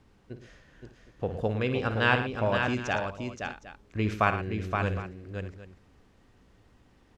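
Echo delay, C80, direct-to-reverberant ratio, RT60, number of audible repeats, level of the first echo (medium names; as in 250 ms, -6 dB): 56 ms, no reverb, no reverb, no reverb, 5, -10.5 dB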